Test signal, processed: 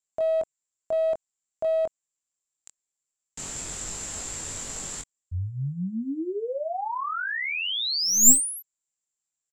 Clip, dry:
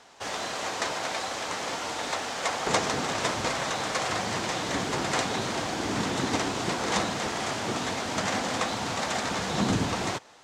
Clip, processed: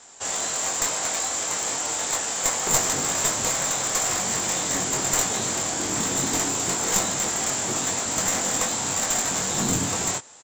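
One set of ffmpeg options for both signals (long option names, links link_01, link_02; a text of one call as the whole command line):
ffmpeg -i in.wav -filter_complex "[0:a]lowpass=frequency=7400:width_type=q:width=15,asplit=2[link_01][link_02];[link_02]adelay=22,volume=-5dB[link_03];[link_01][link_03]amix=inputs=2:normalize=0,aeval=exprs='clip(val(0),-1,0.1)':channel_layout=same,volume=-1dB" out.wav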